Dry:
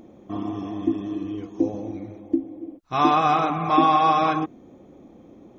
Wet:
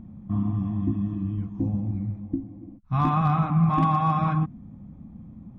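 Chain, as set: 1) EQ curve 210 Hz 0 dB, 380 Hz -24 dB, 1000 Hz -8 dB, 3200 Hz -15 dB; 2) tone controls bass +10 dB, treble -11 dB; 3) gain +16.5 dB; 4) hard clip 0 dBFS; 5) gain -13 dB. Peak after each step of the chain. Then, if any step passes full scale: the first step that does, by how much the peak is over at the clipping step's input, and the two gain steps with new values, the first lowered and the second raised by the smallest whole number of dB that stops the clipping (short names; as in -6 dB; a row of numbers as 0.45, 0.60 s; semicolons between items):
-16.5, -13.5, +3.0, 0.0, -13.0 dBFS; step 3, 3.0 dB; step 3 +13.5 dB, step 5 -10 dB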